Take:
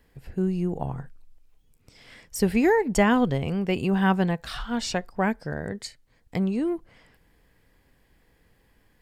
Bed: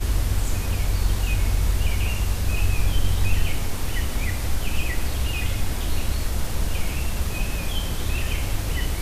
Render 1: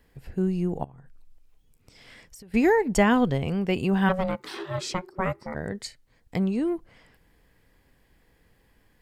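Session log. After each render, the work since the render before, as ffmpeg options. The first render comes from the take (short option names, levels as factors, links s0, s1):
-filter_complex "[0:a]asettb=1/sr,asplit=3[s0][s1][s2];[s0]atrim=end=0.844[s3];[s1]atrim=start=0.84:end=2.54,asetpts=PTS-STARTPTS,afade=t=in:d=0.004:c=qsin,afade=t=out:st=1.696:d=0.004:c=qsin,acompressor=threshold=0.00631:ratio=12:attack=3.2:release=140:knee=1:detection=peak[s4];[s2]atrim=start=2.536[s5];[s3][s4]acrossfade=d=0.004:c1=hsin:c2=qsin[s6];[s6][s5]acrossfade=d=0.004:c1=qsin:c2=hsin,asplit=3[s7][s8][s9];[s7]afade=t=out:st=4.08:d=0.02[s10];[s8]aeval=exprs='val(0)*sin(2*PI*370*n/s)':c=same,afade=t=in:st=4.08:d=0.02,afade=t=out:st=5.54:d=0.02[s11];[s9]afade=t=in:st=5.54:d=0.02[s12];[s10][s11][s12]amix=inputs=3:normalize=0"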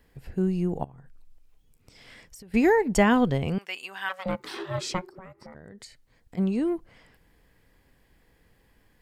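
-filter_complex "[0:a]asettb=1/sr,asplit=3[s0][s1][s2];[s0]atrim=end=3.584[s3];[s1]atrim=start=3.58:end=4.26,asetpts=PTS-STARTPTS,afade=t=in:d=0.004:c=qsin,afade=t=out:st=0.676:d=0.004:c=qsin,highpass=1400[s4];[s2]atrim=start=4.256[s5];[s3][s4]acrossfade=d=0.004:c1=hsin:c2=qsin[s6];[s6][s5]acrossfade=d=0.004:c1=qsin:c2=hsin,asplit=3[s7][s8][s9];[s7]afade=t=out:st=5.1:d=0.02[s10];[s8]acompressor=threshold=0.00891:ratio=10:attack=3.2:release=140:knee=1:detection=peak,afade=t=in:st=5.1:d=0.02,afade=t=out:st=6.37:d=0.02[s11];[s9]afade=t=in:st=6.37:d=0.02[s12];[s10][s11][s12]amix=inputs=3:normalize=0"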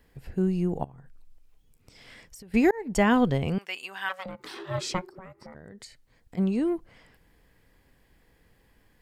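-filter_complex "[0:a]asettb=1/sr,asplit=3[s0][s1][s2];[s0]atrim=end=4.234[s3];[s1]atrim=start=4.23:end=4.68,asetpts=PTS-STARTPTS,afade=t=in:d=0.004:c=qsin,afade=t=out:st=0.446:d=0.004:c=qsin,acompressor=threshold=0.0141:ratio=3:attack=3.2:release=140:knee=1:detection=peak[s4];[s2]atrim=start=4.676[s5];[s3][s4]acrossfade=d=0.004:c1=hsin:c2=qsin[s6];[s6][s5]acrossfade=d=0.004:c1=qsin:c2=hsin,asplit=2[s7][s8];[s7]atrim=end=2.71,asetpts=PTS-STARTPTS,afade=t=out:st=2.706:d=0.004:c=hsin[s9];[s8]atrim=start=2.71,asetpts=PTS-STARTPTS,afade=t=in:d=0.54:c=qsin[s10];[s9][s10]concat=n=2:v=0:a=1"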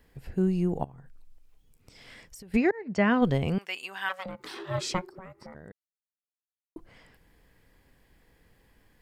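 -filter_complex "[0:a]asplit=3[s0][s1][s2];[s0]afade=t=out:st=2.56:d=0.02[s3];[s1]highpass=f=100:w=0.5412,highpass=f=100:w=1.3066,equalizer=f=290:t=q:w=4:g=-7,equalizer=f=440:t=q:w=4:g=-3,equalizer=f=870:t=q:w=4:g=-8,equalizer=f=3400:t=q:w=4:g=-9,lowpass=f=4700:w=0.5412,lowpass=f=4700:w=1.3066,afade=t=in:st=2.56:d=0.02,afade=t=out:st=3.21:d=0.02[s4];[s2]afade=t=in:st=3.21:d=0.02[s5];[s3][s4][s5]amix=inputs=3:normalize=0,asplit=3[s6][s7][s8];[s6]atrim=end=5.72,asetpts=PTS-STARTPTS,afade=t=out:st=5.716:d=0.004:c=hsin[s9];[s7]atrim=start=5.72:end=6.76,asetpts=PTS-STARTPTS,volume=0[s10];[s8]atrim=start=6.76,asetpts=PTS-STARTPTS,afade=t=in:d=0.004:c=hsin[s11];[s9][s10][s11]concat=n=3:v=0:a=1"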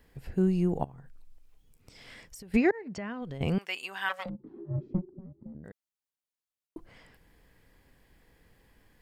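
-filter_complex "[0:a]asettb=1/sr,asplit=3[s0][s1][s2];[s0]atrim=end=2.724[s3];[s1]atrim=start=2.72:end=3.41,asetpts=PTS-STARTPTS,afade=t=in:d=0.004:c=qsin,afade=t=out:st=0.686:d=0.004:c=qsin,acompressor=threshold=0.0141:ratio=4:attack=3.2:release=140:knee=1:detection=peak[s4];[s2]atrim=start=3.406[s5];[s3][s4]acrossfade=d=0.004:c1=hsin:c2=qsin[s6];[s6][s5]acrossfade=d=0.004:c1=qsin:c2=hsin,asplit=3[s7][s8][s9];[s7]afade=t=out:st=4.28:d=0.02[s10];[s8]lowpass=f=250:t=q:w=2,afade=t=in:st=4.28:d=0.02,afade=t=out:st=5.63:d=0.02[s11];[s9]afade=t=in:st=5.63:d=0.02[s12];[s10][s11][s12]amix=inputs=3:normalize=0"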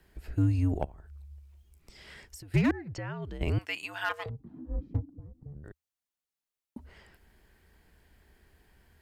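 -af "aeval=exprs='clip(val(0),-1,0.0794)':c=same,afreqshift=-83"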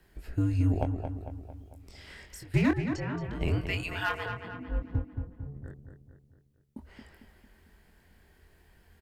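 -filter_complex "[0:a]asplit=2[s0][s1];[s1]adelay=23,volume=0.501[s2];[s0][s2]amix=inputs=2:normalize=0,asplit=2[s3][s4];[s4]adelay=225,lowpass=f=3300:p=1,volume=0.447,asplit=2[s5][s6];[s6]adelay=225,lowpass=f=3300:p=1,volume=0.52,asplit=2[s7][s8];[s8]adelay=225,lowpass=f=3300:p=1,volume=0.52,asplit=2[s9][s10];[s10]adelay=225,lowpass=f=3300:p=1,volume=0.52,asplit=2[s11][s12];[s12]adelay=225,lowpass=f=3300:p=1,volume=0.52,asplit=2[s13][s14];[s14]adelay=225,lowpass=f=3300:p=1,volume=0.52[s15];[s5][s7][s9][s11][s13][s15]amix=inputs=6:normalize=0[s16];[s3][s16]amix=inputs=2:normalize=0"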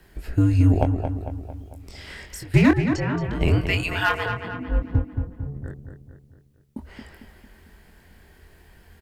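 -af "volume=2.82"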